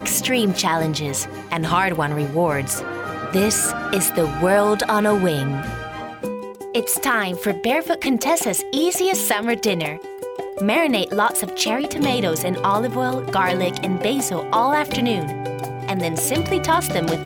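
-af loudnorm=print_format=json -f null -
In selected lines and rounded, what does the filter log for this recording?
"input_i" : "-20.5",
"input_tp" : "-6.7",
"input_lra" : "1.4",
"input_thresh" : "-30.6",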